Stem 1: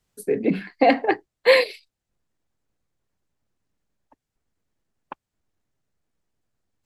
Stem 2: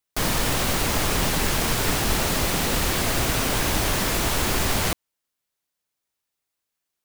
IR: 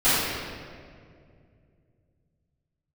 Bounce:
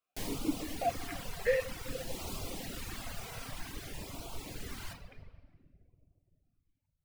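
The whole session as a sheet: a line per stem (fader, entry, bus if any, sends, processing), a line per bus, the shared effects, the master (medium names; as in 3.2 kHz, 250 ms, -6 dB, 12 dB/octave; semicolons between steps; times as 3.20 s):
+1.0 dB, 0.00 s, send -21 dB, compression 3:1, threshold -28 dBFS, peak gain reduction 13.5 dB; peaking EQ 1.4 kHz +6 dB 1 oct; stepped vowel filter 5 Hz
-15.0 dB, 0.00 s, send -24 dB, auto duck -8 dB, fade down 1.80 s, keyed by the first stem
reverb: on, RT60 2.2 s, pre-delay 3 ms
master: reverb removal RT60 1.2 s; LFO notch sine 0.53 Hz 290–1800 Hz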